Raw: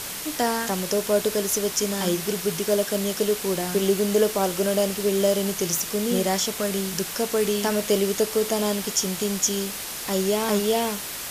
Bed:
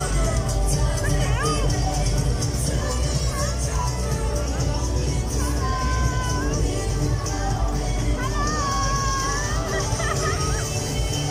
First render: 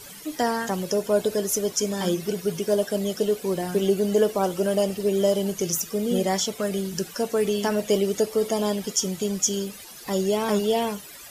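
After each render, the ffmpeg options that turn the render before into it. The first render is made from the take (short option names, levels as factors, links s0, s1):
-af "afftdn=nr=15:nf=-33"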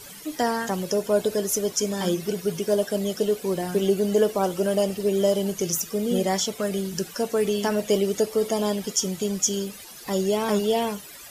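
-af anull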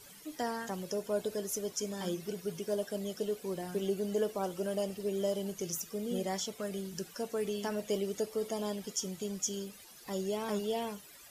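-af "volume=0.266"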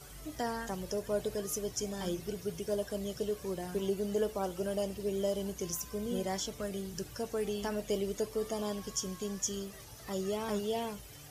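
-filter_complex "[1:a]volume=0.0335[s0];[0:a][s0]amix=inputs=2:normalize=0"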